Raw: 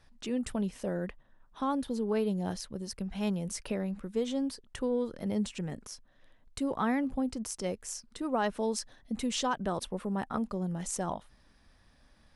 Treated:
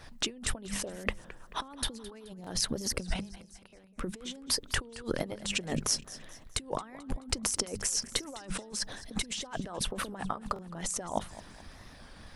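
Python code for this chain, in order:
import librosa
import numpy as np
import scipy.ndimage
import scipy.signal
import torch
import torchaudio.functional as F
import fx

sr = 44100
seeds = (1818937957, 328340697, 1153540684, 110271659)

y = fx.gate_flip(x, sr, shuts_db=-29.0, range_db=-34, at=(3.13, 3.98), fade=0.02)
y = fx.hum_notches(y, sr, base_hz=50, count=4)
y = fx.over_compress(y, sr, threshold_db=-43.0, ratio=-1.0)
y = fx.hpss(y, sr, part='percussive', gain_db=9)
y = fx.echo_feedback(y, sr, ms=214, feedback_pct=43, wet_db=-17)
y = fx.buffer_glitch(y, sr, at_s=(2.42, 3.68, 6.0, 8.05, 10.54), block=1024, repeats=1)
y = fx.record_warp(y, sr, rpm=33.33, depth_cents=100.0)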